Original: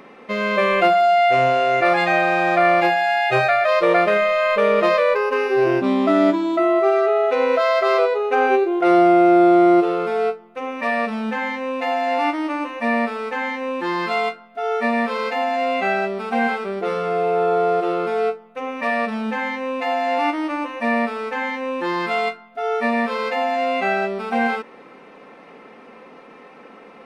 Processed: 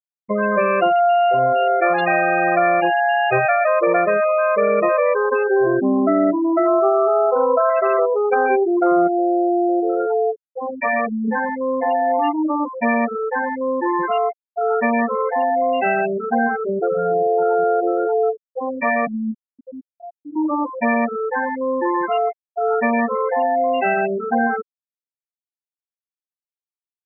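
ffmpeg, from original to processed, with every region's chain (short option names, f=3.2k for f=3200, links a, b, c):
-filter_complex "[0:a]asettb=1/sr,asplit=3[a][b][c];[a]atrim=end=6.674[d];[b]atrim=start=6.67:end=7.7,asetpts=PTS-STARTPTS,afade=t=in:d=0.004:c=qsin,afade=t=out:st=1.026:d=0.004:c=qsin,lowpass=f=1.2k:t=q:w=1.7,bandreject=f=60:t=h:w=6,bandreject=f=120:t=h:w=6,bandreject=f=180:t=h:w=6,bandreject=f=240:t=h:w=6,bandreject=f=300:t=h:w=6,bandreject=f=360:t=h:w=6,bandreject=f=420:t=h:w=6,bandreject=f=480:t=h:w=6,bandreject=f=540:t=h:w=6,bandreject=f=600:t=h:w=6[e];[c]atrim=start=7.696[f];[d][e]acrossfade=d=0.004:c1=hsin:c2=qsin[g];[g][f]acrossfade=d=0.004:c1=qsin:c2=hsin,asettb=1/sr,asplit=3[h][i][j];[h]atrim=end=9.074[k];[i]atrim=start=9.07:end=11.28,asetpts=PTS-STARTPTS,afade=t=in:d=0.004:c=qsin,afade=t=out:st=2.206:d=0.004:c=qsin,asubboost=boost=8.5:cutoff=100,acompressor=threshold=-17dB:ratio=5:attack=3.2:release=140:knee=1:detection=peak[l];[j]atrim=start=11.276[m];[k][l]acrossfade=d=0.004:c1=hsin:c2=qsin[n];[n][m]acrossfade=d=0.004:c1=qsin:c2=hsin,asettb=1/sr,asplit=3[o][p][q];[o]atrim=end=19.074[r];[p]atrim=start=19.07:end=20.36,asetpts=PTS-STARTPTS,afade=t=in:d=0.004:c=qsin,afade=t=out:st=1.286:d=0.004:c=qsin,bandreject=f=60:t=h:w=6,bandreject=f=120:t=h:w=6,bandreject=f=180:t=h:w=6,bandreject=f=240:t=h:w=6,bandreject=f=300:t=h:w=6,bandreject=f=360:t=h:w=6,bandreject=f=420:t=h:w=6,bandreject=f=480:t=h:w=6,acrossover=split=220|3000[s][t][u];[t]acompressor=threshold=-34dB:ratio=8:attack=3.2:release=140:knee=2.83:detection=peak[v];[s][v][u]amix=inputs=3:normalize=0[w];[q]atrim=start=20.356[x];[r][w]acrossfade=d=0.004:c1=hsin:c2=qsin[y];[y][x]acrossfade=d=0.004:c1=qsin:c2=hsin,afftfilt=real='re*gte(hypot(re,im),0.2)':imag='im*gte(hypot(re,im),0.2)':win_size=1024:overlap=0.75,bandreject=f=2.1k:w=9.7,acompressor=threshold=-22dB:ratio=2.5,volume=6dB"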